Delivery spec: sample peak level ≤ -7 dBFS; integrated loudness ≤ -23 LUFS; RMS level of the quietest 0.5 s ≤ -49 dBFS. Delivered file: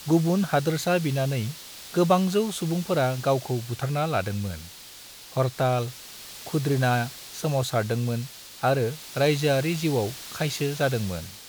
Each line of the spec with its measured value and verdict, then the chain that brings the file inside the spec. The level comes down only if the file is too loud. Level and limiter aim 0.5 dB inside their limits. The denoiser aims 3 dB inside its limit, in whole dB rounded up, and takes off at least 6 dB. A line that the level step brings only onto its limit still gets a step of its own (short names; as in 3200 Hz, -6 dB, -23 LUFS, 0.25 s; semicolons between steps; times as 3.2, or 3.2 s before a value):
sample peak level -8.0 dBFS: OK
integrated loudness -26.0 LUFS: OK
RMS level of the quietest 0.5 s -45 dBFS: fail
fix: denoiser 7 dB, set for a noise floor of -45 dBFS